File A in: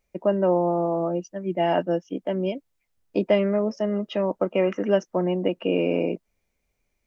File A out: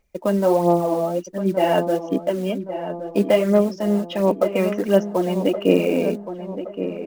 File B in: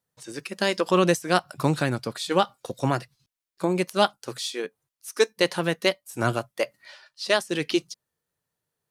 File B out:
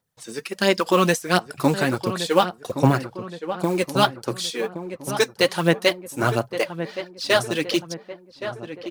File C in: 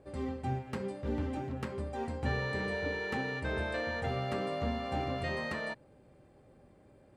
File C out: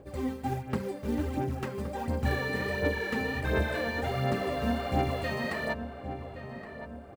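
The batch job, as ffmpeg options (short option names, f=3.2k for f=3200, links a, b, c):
-filter_complex "[0:a]acrusher=bits=6:mode=log:mix=0:aa=0.000001,aphaser=in_gain=1:out_gain=1:delay=4.7:decay=0.52:speed=1.4:type=sinusoidal,asplit=2[a][b];[b]adelay=1120,lowpass=f=1.7k:p=1,volume=-10dB,asplit=2[c][d];[d]adelay=1120,lowpass=f=1.7k:p=1,volume=0.52,asplit=2[e][f];[f]adelay=1120,lowpass=f=1.7k:p=1,volume=0.52,asplit=2[g][h];[h]adelay=1120,lowpass=f=1.7k:p=1,volume=0.52,asplit=2[i][j];[j]adelay=1120,lowpass=f=1.7k:p=1,volume=0.52,asplit=2[k][l];[l]adelay=1120,lowpass=f=1.7k:p=1,volume=0.52[m];[a][c][e][g][i][k][m]amix=inputs=7:normalize=0,volume=2dB"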